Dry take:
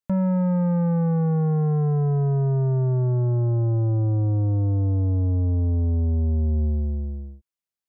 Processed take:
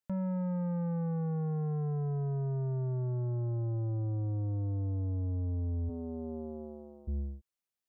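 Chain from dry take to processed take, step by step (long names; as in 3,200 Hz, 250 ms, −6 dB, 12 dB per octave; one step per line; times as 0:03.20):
0:05.88–0:07.07: high-pass filter 220 Hz → 700 Hz 12 dB per octave
brickwall limiter −30 dBFS, peak gain reduction 10.5 dB
level −1.5 dB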